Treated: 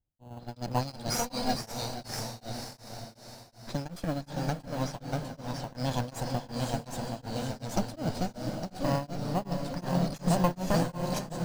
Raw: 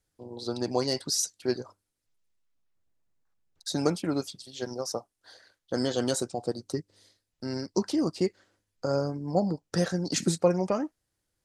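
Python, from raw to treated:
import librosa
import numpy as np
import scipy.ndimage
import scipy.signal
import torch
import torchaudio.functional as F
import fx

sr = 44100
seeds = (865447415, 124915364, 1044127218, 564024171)

p1 = fx.lower_of_two(x, sr, delay_ms=1.2)
p2 = fx.env_lowpass(p1, sr, base_hz=550.0, full_db=-28.0)
p3 = fx.echo_diffused(p2, sr, ms=522, feedback_pct=51, wet_db=-5.5)
p4 = fx.echo_pitch(p3, sr, ms=398, semitones=-1, count=2, db_per_echo=-3.0)
p5 = fx.comb(p4, sr, ms=4.2, depth=0.74, at=(1.14, 1.55))
p6 = fx.sample_hold(p5, sr, seeds[0], rate_hz=3600.0, jitter_pct=0)
p7 = p5 + (p6 * librosa.db_to_amplitude(-7.5))
p8 = p7 * np.abs(np.cos(np.pi * 2.7 * np.arange(len(p7)) / sr))
y = p8 * librosa.db_to_amplitude(-3.5)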